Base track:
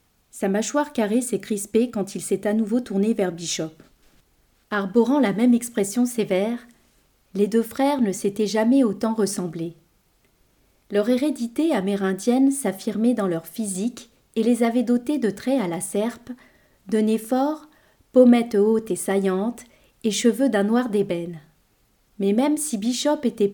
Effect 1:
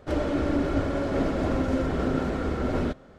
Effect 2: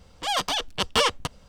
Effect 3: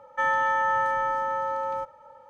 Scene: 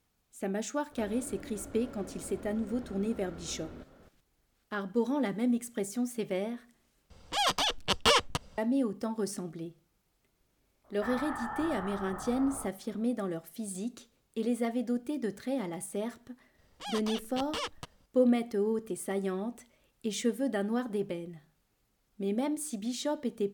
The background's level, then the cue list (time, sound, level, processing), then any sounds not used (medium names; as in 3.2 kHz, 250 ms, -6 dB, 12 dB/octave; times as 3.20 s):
base track -11.5 dB
0.91 s: add 1 -7 dB + compression, threshold -37 dBFS
7.10 s: replace with 2 -2.5 dB
10.84 s: add 3 -14.5 dB + LPC vocoder at 8 kHz whisper
16.58 s: add 2 -13.5 dB + peak limiter -11 dBFS